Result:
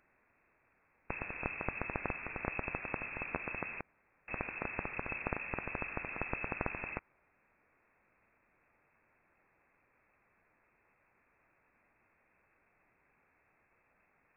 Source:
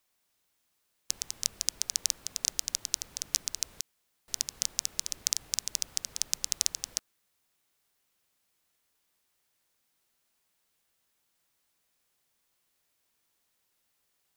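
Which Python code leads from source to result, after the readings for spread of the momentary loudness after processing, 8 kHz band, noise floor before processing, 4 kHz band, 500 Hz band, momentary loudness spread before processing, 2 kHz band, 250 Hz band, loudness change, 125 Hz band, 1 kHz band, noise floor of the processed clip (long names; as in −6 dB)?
5 LU, below −40 dB, −77 dBFS, below −40 dB, +16.0 dB, 6 LU, +10.5 dB, +15.0 dB, −8.0 dB, +12.5 dB, +14.0 dB, −74 dBFS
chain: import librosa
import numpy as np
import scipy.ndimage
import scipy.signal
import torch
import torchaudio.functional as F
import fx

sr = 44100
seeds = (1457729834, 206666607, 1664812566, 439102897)

y = fx.freq_invert(x, sr, carrier_hz=2600)
y = y * librosa.db_to_amplitude(12.0)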